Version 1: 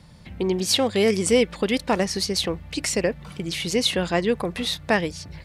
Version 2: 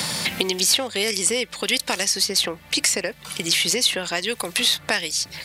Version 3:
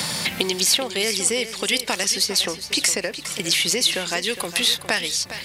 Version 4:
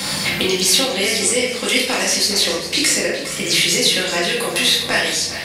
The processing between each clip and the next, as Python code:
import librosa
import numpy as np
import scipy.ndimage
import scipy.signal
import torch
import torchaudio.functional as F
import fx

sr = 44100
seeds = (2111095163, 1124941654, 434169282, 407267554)

y1 = fx.tilt_eq(x, sr, slope=3.5)
y1 = fx.band_squash(y1, sr, depth_pct=100)
y1 = F.gain(torch.from_numpy(y1), -2.0).numpy()
y2 = fx.echo_feedback(y1, sr, ms=410, feedback_pct=28, wet_db=-12.0)
y3 = fx.room_shoebox(y2, sr, seeds[0], volume_m3=230.0, walls='mixed', distance_m=2.2)
y3 = F.gain(torch.from_numpy(y3), -2.0).numpy()